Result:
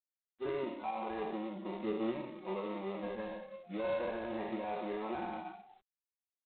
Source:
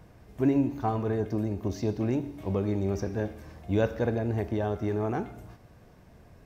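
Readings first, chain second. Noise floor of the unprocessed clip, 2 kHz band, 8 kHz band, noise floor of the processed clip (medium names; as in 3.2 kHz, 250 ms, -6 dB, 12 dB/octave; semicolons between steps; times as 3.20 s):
-55 dBFS, -5.0 dB, no reading, under -85 dBFS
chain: spectral sustain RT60 1.41 s; dynamic bell 960 Hz, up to +7 dB, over -49 dBFS, Q 3.8; high-pass 340 Hz 12 dB/octave; treble shelf 3.1 kHz -7.5 dB; comb 5.4 ms, depth 87%; on a send: delay 314 ms -15.5 dB; on the sum: peak limiter -20.5 dBFS, peak gain reduction 9.5 dB; flange 0.41 Hz, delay 7.7 ms, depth 3.8 ms, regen +71%; in parallel at -6 dB: sample-rate reducer 1.6 kHz, jitter 0%; on the sum: spectral noise reduction 21 dB; trim -6 dB; G.726 24 kbps 8 kHz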